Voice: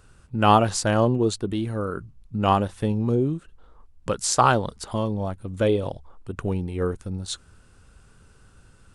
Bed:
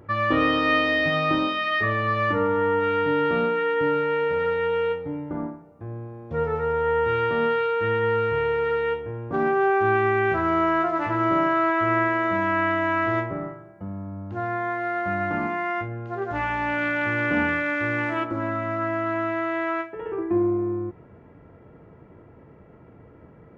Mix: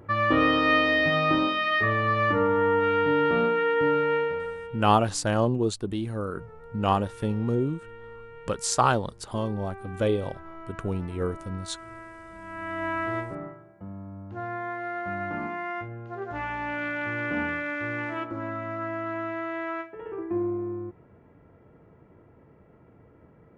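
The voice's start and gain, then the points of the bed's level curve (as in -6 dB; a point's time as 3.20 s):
4.40 s, -3.5 dB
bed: 4.16 s -0.5 dB
4.90 s -22 dB
12.34 s -22 dB
12.85 s -6 dB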